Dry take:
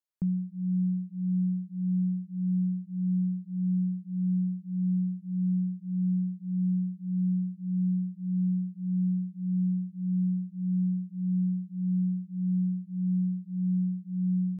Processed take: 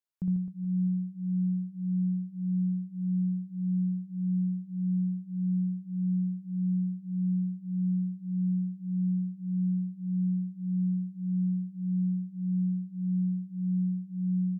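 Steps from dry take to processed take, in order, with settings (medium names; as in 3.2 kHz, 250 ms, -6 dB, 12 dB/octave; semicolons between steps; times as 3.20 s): reverse bouncing-ball echo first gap 60 ms, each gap 1.4×, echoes 5; trim -3.5 dB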